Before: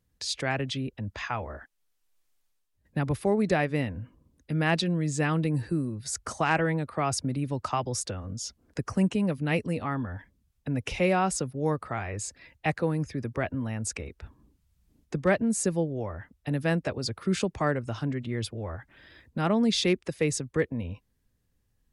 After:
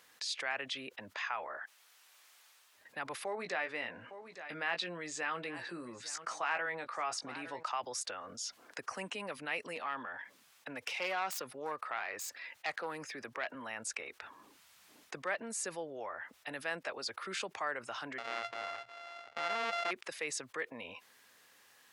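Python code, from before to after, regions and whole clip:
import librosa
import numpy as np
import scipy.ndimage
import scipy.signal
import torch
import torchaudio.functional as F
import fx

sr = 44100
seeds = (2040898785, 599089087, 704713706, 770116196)

y = fx.chain(x, sr, fx.air_absorb(metres=55.0),
    fx.doubler(ms=17.0, db=-8.5),
    fx.echo_single(ms=858, db=-22.5), at=(3.24, 7.66))
y = fx.chain(y, sr, fx.self_delay(depth_ms=0.12),
    fx.highpass(hz=100.0, slope=12), at=(9.75, 13.55))
y = fx.chain(y, sr, fx.sample_sort(block=64),
    fx.lowpass(hz=4100.0, slope=12),
    fx.hum_notches(base_hz=60, count=3), at=(18.18, 19.91))
y = scipy.signal.sosfilt(scipy.signal.butter(2, 980.0, 'highpass', fs=sr, output='sos'), y)
y = fx.high_shelf(y, sr, hz=5200.0, db=-9.5)
y = fx.env_flatten(y, sr, amount_pct=50)
y = y * librosa.db_to_amplitude(-6.5)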